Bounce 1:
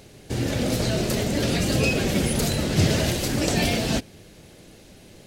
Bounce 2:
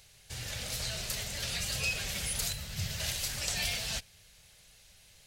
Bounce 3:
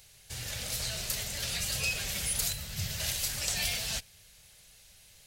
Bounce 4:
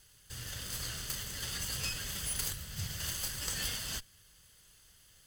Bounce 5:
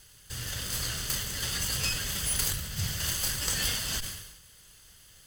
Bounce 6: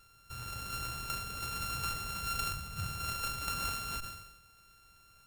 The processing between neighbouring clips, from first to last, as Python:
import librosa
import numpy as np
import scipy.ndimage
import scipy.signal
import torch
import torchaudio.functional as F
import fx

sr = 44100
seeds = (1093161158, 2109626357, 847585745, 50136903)

y1 = fx.tone_stack(x, sr, knobs='10-0-10')
y1 = fx.spec_box(y1, sr, start_s=2.52, length_s=0.48, low_hz=220.0, high_hz=12000.0, gain_db=-6)
y1 = y1 * librosa.db_to_amplitude(-3.5)
y2 = fx.high_shelf(y1, sr, hz=8900.0, db=7.0)
y3 = fx.lower_of_two(y2, sr, delay_ms=0.63)
y3 = y3 * librosa.db_to_amplitude(-3.0)
y4 = fx.sustainer(y3, sr, db_per_s=55.0)
y4 = y4 * librosa.db_to_amplitude(6.5)
y5 = np.r_[np.sort(y4[:len(y4) // 32 * 32].reshape(-1, 32), axis=1).ravel(), y4[len(y4) // 32 * 32:]]
y5 = y5 * librosa.db_to_amplitude(-6.5)